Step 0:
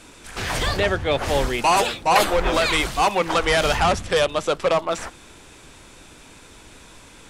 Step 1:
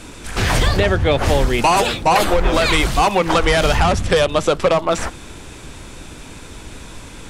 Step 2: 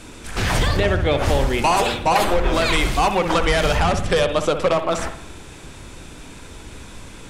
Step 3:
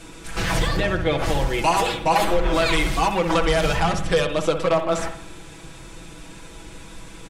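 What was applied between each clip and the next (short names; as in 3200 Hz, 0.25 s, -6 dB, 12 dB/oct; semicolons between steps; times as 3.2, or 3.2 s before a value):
low shelf 270 Hz +7.5 dB; compressor, threshold -18 dBFS, peak gain reduction 7.5 dB; gain +7 dB
reverb, pre-delay 59 ms, DRR 8 dB; gain -3.5 dB
in parallel at -10.5 dB: soft clip -15.5 dBFS, distortion -13 dB; on the sum: comb 6.1 ms; gain -5.5 dB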